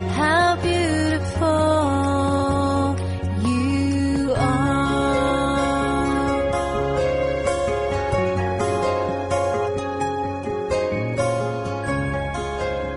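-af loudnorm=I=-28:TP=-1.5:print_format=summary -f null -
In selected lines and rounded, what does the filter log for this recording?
Input Integrated:    -21.9 LUFS
Input True Peak:      -6.6 dBTP
Input LRA:             3.7 LU
Input Threshold:     -31.9 LUFS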